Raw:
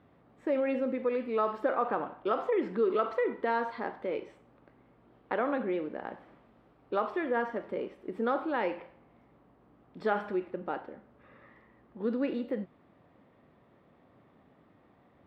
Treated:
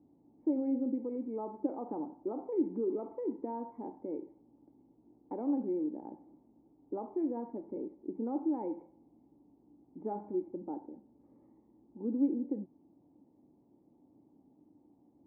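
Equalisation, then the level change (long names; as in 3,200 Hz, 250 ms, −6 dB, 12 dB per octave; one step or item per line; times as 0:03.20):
formant resonators in series u
+5.5 dB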